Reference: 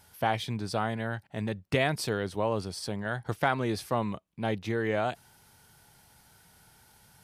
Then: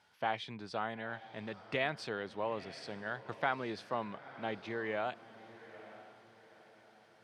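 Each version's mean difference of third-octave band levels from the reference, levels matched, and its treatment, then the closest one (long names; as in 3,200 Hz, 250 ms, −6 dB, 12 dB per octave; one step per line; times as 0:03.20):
7.0 dB: band-pass filter 140–3,700 Hz
low-shelf EQ 440 Hz −8 dB
feedback delay with all-pass diffusion 903 ms, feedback 40%, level −15.5 dB
level −4.5 dB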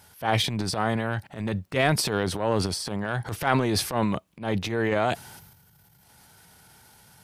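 3.5 dB: high-pass filter 57 Hz
gain on a spectral selection 0:05.39–0:06.03, 210–12,000 Hz −10 dB
transient designer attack −11 dB, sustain +9 dB
level +5 dB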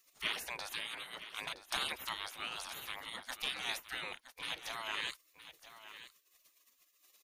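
13.5 dB: gate on every frequency bin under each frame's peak −25 dB weak
notch filter 7,700 Hz, Q 9.4
single-tap delay 967 ms −13.5 dB
level +8.5 dB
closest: second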